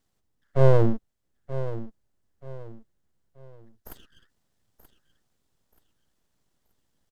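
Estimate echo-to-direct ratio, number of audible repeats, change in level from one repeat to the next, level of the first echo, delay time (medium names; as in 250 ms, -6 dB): -12.5 dB, 3, -9.5 dB, -13.0 dB, 930 ms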